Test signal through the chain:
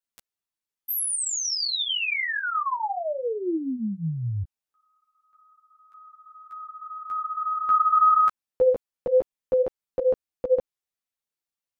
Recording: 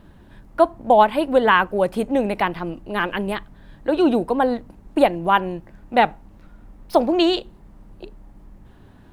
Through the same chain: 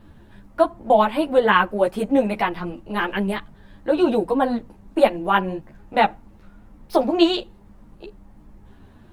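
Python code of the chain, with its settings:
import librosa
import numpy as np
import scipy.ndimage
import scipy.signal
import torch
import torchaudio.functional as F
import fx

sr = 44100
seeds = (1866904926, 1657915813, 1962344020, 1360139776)

y = fx.ensemble(x, sr)
y = y * 10.0 ** (2.5 / 20.0)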